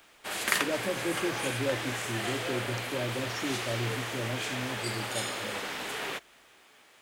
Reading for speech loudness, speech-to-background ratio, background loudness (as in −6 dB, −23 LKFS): −36.0 LKFS, −3.0 dB, −33.0 LKFS